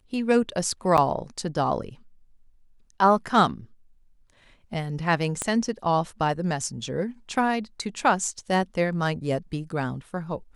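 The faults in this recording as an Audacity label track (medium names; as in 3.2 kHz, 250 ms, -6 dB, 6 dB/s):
0.970000	0.980000	dropout 7.7 ms
5.420000	5.420000	pop -13 dBFS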